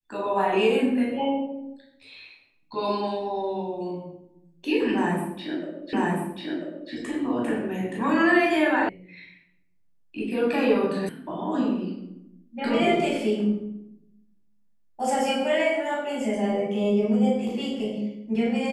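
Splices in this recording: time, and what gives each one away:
5.93 repeat of the last 0.99 s
8.89 sound cut off
11.09 sound cut off

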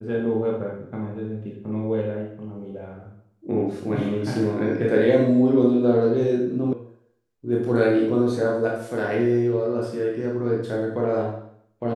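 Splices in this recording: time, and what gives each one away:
6.73 sound cut off

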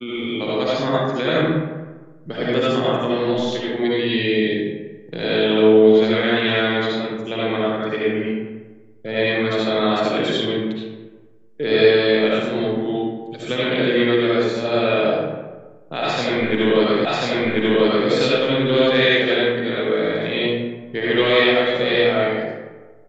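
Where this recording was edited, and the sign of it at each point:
17.05 repeat of the last 1.04 s

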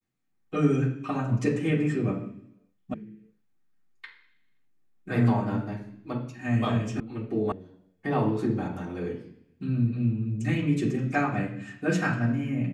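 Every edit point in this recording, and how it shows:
2.94 sound cut off
7 sound cut off
7.52 sound cut off

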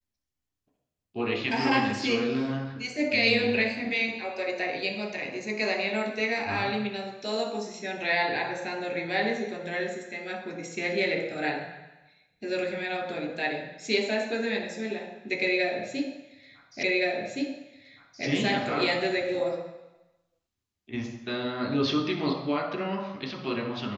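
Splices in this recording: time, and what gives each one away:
16.83 repeat of the last 1.42 s

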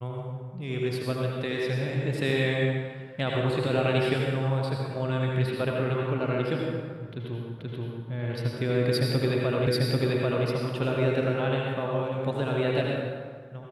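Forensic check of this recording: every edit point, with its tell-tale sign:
7.59 repeat of the last 0.48 s
9.67 repeat of the last 0.79 s

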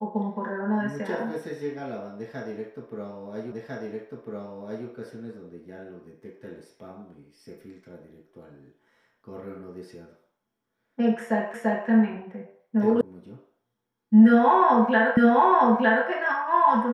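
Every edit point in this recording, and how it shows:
3.52 repeat of the last 1.35 s
11.54 repeat of the last 0.34 s
13.01 sound cut off
15.17 repeat of the last 0.91 s

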